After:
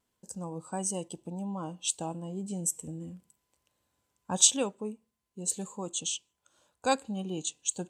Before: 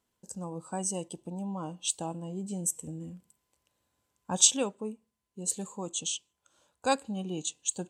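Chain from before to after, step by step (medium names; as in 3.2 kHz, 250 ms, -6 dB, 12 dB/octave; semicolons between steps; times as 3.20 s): vibrato 1.4 Hz 23 cents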